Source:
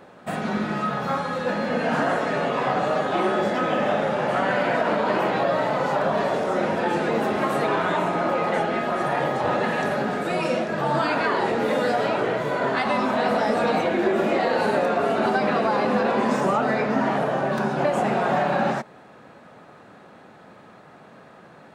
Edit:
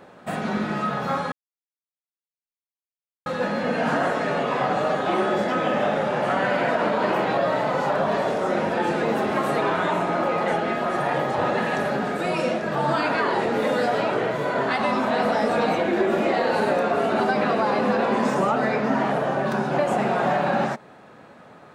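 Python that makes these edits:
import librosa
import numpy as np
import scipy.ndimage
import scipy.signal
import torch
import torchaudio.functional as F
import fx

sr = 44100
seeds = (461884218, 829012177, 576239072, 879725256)

y = fx.edit(x, sr, fx.insert_silence(at_s=1.32, length_s=1.94), tone=tone)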